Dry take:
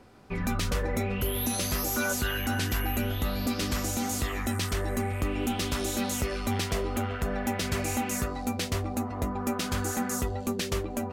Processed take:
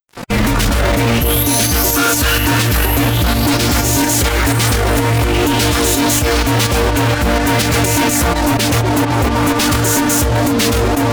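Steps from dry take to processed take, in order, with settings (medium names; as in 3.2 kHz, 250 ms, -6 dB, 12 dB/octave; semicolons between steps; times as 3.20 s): tremolo saw up 4.2 Hz, depth 90%; fuzz box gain 52 dB, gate -53 dBFS; formant-preserving pitch shift +3 st; trim +1.5 dB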